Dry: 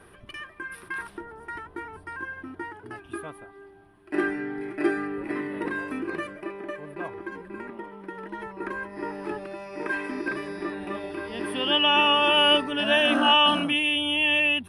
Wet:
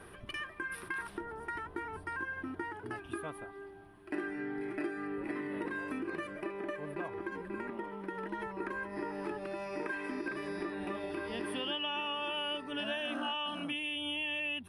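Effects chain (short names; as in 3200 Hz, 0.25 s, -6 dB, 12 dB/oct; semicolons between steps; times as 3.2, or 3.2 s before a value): compressor 6:1, threshold -35 dBFS, peak gain reduction 19 dB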